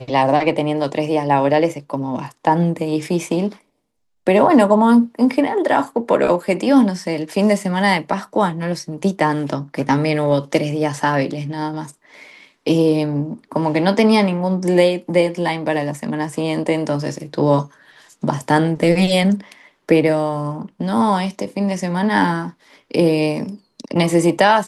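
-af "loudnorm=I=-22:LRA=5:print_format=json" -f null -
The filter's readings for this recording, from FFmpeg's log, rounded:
"input_i" : "-18.0",
"input_tp" : "-1.5",
"input_lra" : "3.4",
"input_thresh" : "-28.4",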